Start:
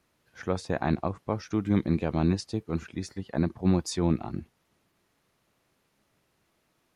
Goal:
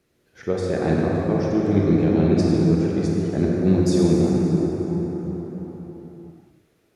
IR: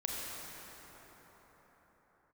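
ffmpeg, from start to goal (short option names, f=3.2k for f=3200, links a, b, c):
-filter_complex "[0:a]equalizer=f=160:t=o:w=0.67:g=4,equalizer=f=400:t=o:w=0.67:g=9,equalizer=f=1k:t=o:w=0.67:g=-7[a];[1:a]atrim=start_sample=2205[b];[a][b]afir=irnorm=-1:irlink=0,volume=1.5dB"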